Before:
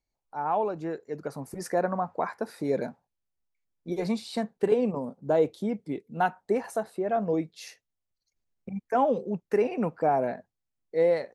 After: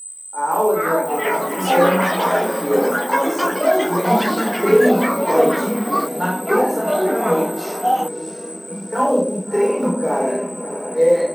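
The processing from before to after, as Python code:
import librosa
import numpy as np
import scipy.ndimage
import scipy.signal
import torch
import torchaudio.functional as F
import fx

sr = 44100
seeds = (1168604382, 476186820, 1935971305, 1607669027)

p1 = fx.peak_eq(x, sr, hz=9200.0, db=5.0, octaves=0.25)
p2 = fx.rider(p1, sr, range_db=4, speed_s=2.0)
p3 = p1 + (p2 * 10.0 ** (2.0 / 20.0))
p4 = p3 + 10.0 ** (-27.0 / 20.0) * np.sin(2.0 * np.pi * 8100.0 * np.arange(len(p3)) / sr)
p5 = p4 + fx.echo_diffused(p4, sr, ms=664, feedback_pct=51, wet_db=-9.5, dry=0)
p6 = fx.chorus_voices(p5, sr, voices=4, hz=0.75, base_ms=30, depth_ms=2.6, mix_pct=40)
p7 = fx.quant_float(p6, sr, bits=4)
p8 = scipy.signal.sosfilt(scipy.signal.cheby1(6, 3, 170.0, 'highpass', fs=sr, output='sos'), p7)
p9 = fx.peak_eq(p8, sr, hz=720.0, db=-8.5, octaves=0.22)
p10 = fx.room_shoebox(p9, sr, seeds[0], volume_m3=820.0, walls='furnished', distance_m=4.4)
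p11 = fx.echo_pitch(p10, sr, ms=514, semitones=7, count=3, db_per_echo=-3.0)
y = p11 * 10.0 ** (-1.0 / 20.0)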